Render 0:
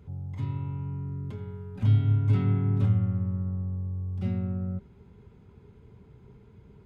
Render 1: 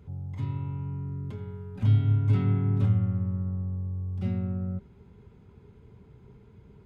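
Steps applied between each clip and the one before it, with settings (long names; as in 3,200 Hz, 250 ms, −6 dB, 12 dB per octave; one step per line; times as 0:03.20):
no processing that can be heard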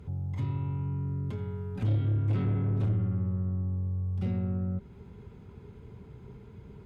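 in parallel at +2 dB: downward compressor, threshold −36 dBFS, peak gain reduction 17.5 dB
on the sum: harmonic generator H 5 −16 dB, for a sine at −11.5 dBFS
level −7.5 dB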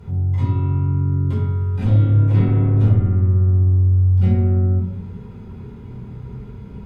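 rectangular room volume 430 cubic metres, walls furnished, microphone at 4.7 metres
level +2.5 dB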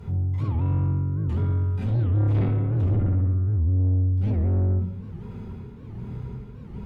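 amplitude tremolo 1.3 Hz, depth 51%
soft clipping −18 dBFS, distortion −11 dB
wow of a warped record 78 rpm, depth 250 cents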